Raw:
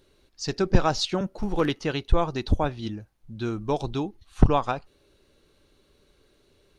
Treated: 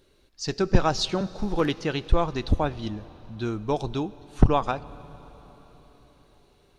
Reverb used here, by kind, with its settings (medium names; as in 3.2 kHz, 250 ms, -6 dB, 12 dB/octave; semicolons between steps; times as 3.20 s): plate-style reverb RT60 4.7 s, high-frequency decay 1×, DRR 17.5 dB